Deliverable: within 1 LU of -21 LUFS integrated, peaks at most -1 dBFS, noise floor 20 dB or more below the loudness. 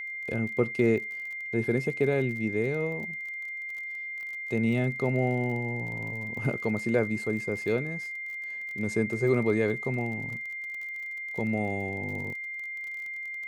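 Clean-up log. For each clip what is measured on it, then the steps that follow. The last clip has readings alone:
tick rate 34 per s; steady tone 2.1 kHz; tone level -34 dBFS; loudness -29.5 LUFS; peak level -11.5 dBFS; loudness target -21.0 LUFS
-> de-click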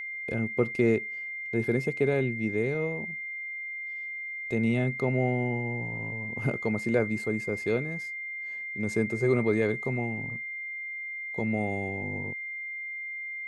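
tick rate 0.074 per s; steady tone 2.1 kHz; tone level -34 dBFS
-> band-stop 2.1 kHz, Q 30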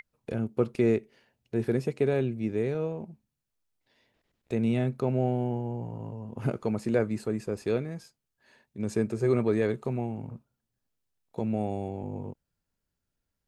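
steady tone not found; loudness -30.0 LUFS; peak level -12.0 dBFS; loudness target -21.0 LUFS
-> trim +9 dB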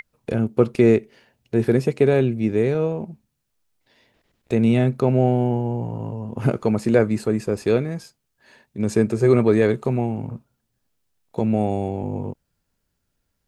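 loudness -21.0 LUFS; peak level -3.0 dBFS; noise floor -75 dBFS

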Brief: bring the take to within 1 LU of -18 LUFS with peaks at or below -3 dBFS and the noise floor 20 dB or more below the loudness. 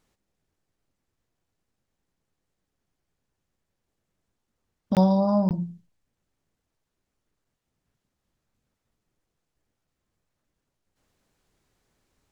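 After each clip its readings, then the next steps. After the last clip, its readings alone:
dropouts 2; longest dropout 18 ms; loudness -23.0 LUFS; peak level -9.5 dBFS; loudness target -18.0 LUFS
-> interpolate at 4.95/5.49 s, 18 ms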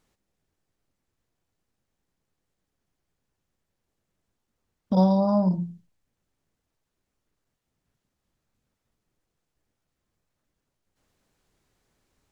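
dropouts 0; loudness -23.0 LUFS; peak level -9.5 dBFS; loudness target -18.0 LUFS
-> trim +5 dB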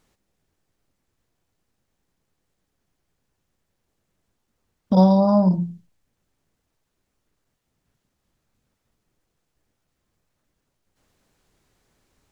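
loudness -18.0 LUFS; peak level -4.5 dBFS; noise floor -77 dBFS

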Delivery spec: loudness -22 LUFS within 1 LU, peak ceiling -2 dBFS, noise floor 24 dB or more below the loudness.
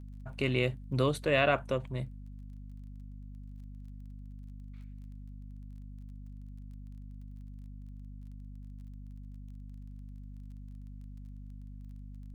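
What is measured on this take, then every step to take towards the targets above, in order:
tick rate 21 per s; hum 50 Hz; highest harmonic 250 Hz; hum level -43 dBFS; loudness -31.0 LUFS; peak level -12.5 dBFS; loudness target -22.0 LUFS
-> de-click; de-hum 50 Hz, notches 5; trim +9 dB

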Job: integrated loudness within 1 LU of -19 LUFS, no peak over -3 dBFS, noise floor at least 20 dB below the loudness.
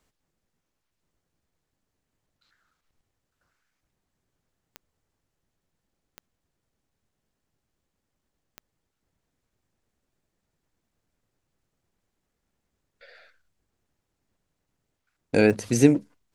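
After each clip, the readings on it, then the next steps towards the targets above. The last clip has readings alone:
clicks found 4; loudness -21.5 LUFS; peak level -3.0 dBFS; loudness target -19.0 LUFS
-> de-click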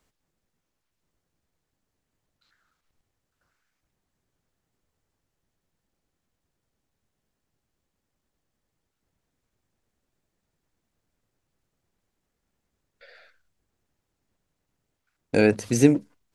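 clicks found 0; loudness -21.5 LUFS; peak level -3.0 dBFS; loudness target -19.0 LUFS
-> trim +2.5 dB; peak limiter -3 dBFS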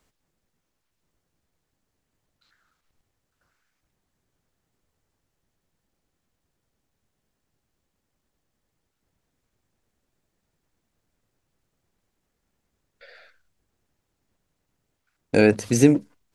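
loudness -19.5 LUFS; peak level -3.0 dBFS; noise floor -78 dBFS

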